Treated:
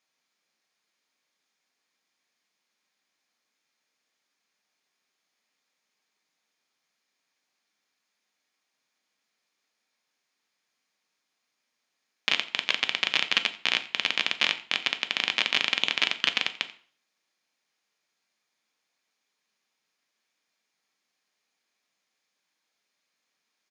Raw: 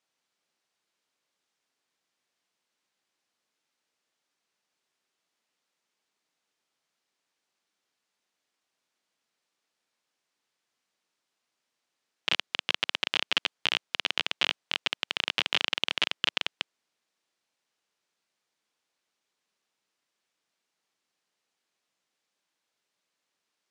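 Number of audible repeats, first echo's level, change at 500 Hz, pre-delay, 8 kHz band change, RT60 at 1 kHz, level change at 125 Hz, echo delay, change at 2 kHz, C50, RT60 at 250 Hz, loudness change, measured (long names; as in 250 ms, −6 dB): 1, −20.0 dB, 0.0 dB, 3 ms, +3.0 dB, 0.45 s, −0.5 dB, 88 ms, +4.0 dB, 15.0 dB, 0.45 s, +3.0 dB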